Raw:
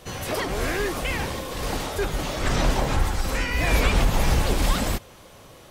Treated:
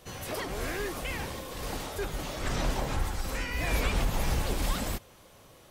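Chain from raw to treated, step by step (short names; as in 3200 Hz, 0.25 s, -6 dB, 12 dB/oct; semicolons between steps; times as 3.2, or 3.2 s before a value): high shelf 11000 Hz +5.5 dB; gain -8 dB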